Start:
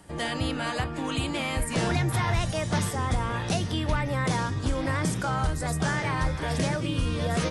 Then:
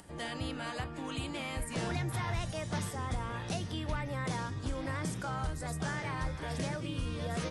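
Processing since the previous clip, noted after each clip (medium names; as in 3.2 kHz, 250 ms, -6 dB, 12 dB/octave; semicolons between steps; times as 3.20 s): upward compressor, threshold -40 dBFS; trim -9 dB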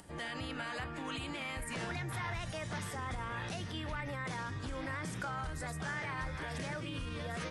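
peak limiter -32 dBFS, peak gain reduction 7 dB; dynamic bell 1.8 kHz, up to +7 dB, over -59 dBFS, Q 0.81; trim -1 dB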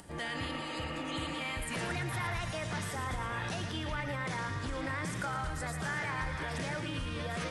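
spectral replace 0.43–1.37 s, 280–2900 Hz before; thinning echo 114 ms, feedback 60%, level -8 dB; trim +3 dB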